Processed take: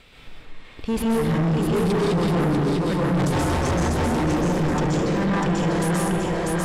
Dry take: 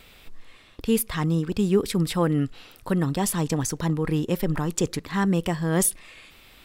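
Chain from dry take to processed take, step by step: 3.20–3.97 s: cycle switcher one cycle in 2, inverted; thinning echo 646 ms, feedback 49%, high-pass 240 Hz, level -3 dB; in parallel at -10 dB: Schmitt trigger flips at -23.5 dBFS; 1.36–1.92 s: on the sum: comb 7.2 ms, depth 45%; 4.57–5.59 s: peaking EQ 11 kHz -9.5 dB 0.63 oct; reverberation RT60 1.7 s, pre-delay 117 ms, DRR -6 dB; saturation -18 dBFS, distortion -8 dB; distance through air 54 m

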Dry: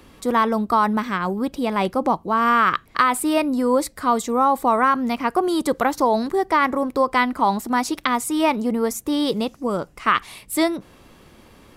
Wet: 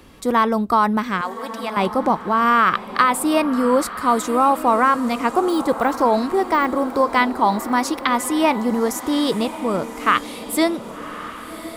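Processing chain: 1.21–1.77 s: high-pass 710 Hz 12 dB/octave; 5.49–7.16 s: de-esser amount 70%; echo that smears into a reverb 1138 ms, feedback 44%, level -12.5 dB; trim +1.5 dB

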